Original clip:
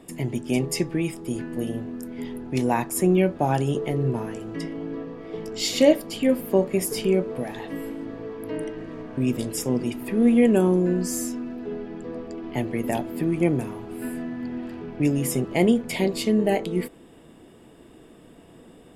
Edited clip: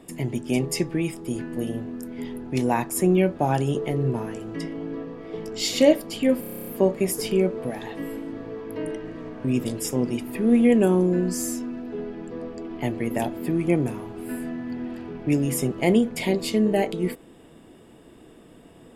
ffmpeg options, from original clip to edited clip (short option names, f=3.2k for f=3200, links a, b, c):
-filter_complex "[0:a]asplit=10[a][b][c][d][e][f][g][h][i][j];[a]atrim=end=6.432[k];[b]atrim=start=6.398:end=6.432[l];[c]atrim=start=6.398:end=6.432[m];[d]atrim=start=6.398:end=6.432[n];[e]atrim=start=6.398:end=6.432[o];[f]atrim=start=6.398:end=6.432[p];[g]atrim=start=6.398:end=6.432[q];[h]atrim=start=6.398:end=6.432[r];[i]atrim=start=6.398:end=6.432[s];[j]atrim=start=6.398[t];[k][l]acrossfade=d=0.004:c1=hsin:c2=hsin[u];[u][m]acrossfade=d=0.004:c1=hsin:c2=hsin[v];[v][n]acrossfade=d=0.004:c1=hsin:c2=hsin[w];[w][o]acrossfade=d=0.004:c1=hsin:c2=hsin[x];[x][p]acrossfade=d=0.004:c1=hsin:c2=hsin[y];[y][q]acrossfade=d=0.004:c1=hsin:c2=hsin[z];[z][r]acrossfade=d=0.004:c1=hsin:c2=hsin[aa];[aa][s]acrossfade=d=0.004:c1=hsin:c2=hsin[ab];[ab][t]acrossfade=d=0.004:c1=hsin:c2=hsin"